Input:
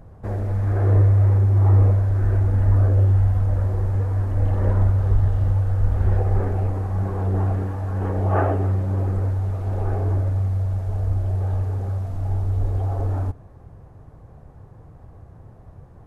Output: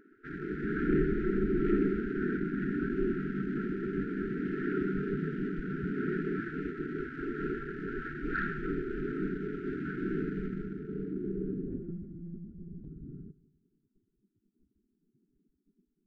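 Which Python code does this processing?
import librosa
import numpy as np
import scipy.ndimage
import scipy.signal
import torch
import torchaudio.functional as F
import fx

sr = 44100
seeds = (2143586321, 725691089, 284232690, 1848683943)

p1 = fx.spec_gate(x, sr, threshold_db=-20, keep='weak')
p2 = fx.peak_eq(p1, sr, hz=520.0, db=-7.0, octaves=1.2, at=(2.37, 2.97))
p3 = fx.quant_dither(p2, sr, seeds[0], bits=6, dither='none')
p4 = p2 + F.gain(torch.from_numpy(p3), -10.5).numpy()
p5 = fx.filter_sweep_lowpass(p4, sr, from_hz=1300.0, to_hz=120.0, start_s=10.46, end_s=12.52, q=0.96)
p6 = 10.0 ** (-19.5 / 20.0) * np.tanh(p5 / 10.0 ** (-19.5 / 20.0))
p7 = fx.brickwall_bandstop(p6, sr, low_hz=440.0, high_hz=1300.0)
p8 = p7 + fx.echo_feedback(p7, sr, ms=175, feedback_pct=35, wet_db=-20.0, dry=0)
p9 = fx.lpc_monotone(p8, sr, seeds[1], pitch_hz=170.0, order=16, at=(11.68, 12.85))
y = F.gain(torch.from_numpy(p9), 4.5).numpy()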